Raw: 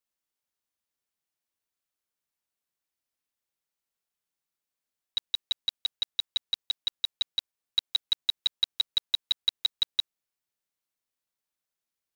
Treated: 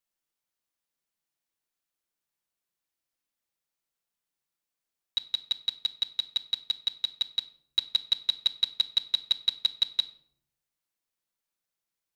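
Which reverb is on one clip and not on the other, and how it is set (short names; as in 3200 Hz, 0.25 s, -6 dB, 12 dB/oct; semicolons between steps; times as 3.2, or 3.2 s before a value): shoebox room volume 1000 m³, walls furnished, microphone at 0.75 m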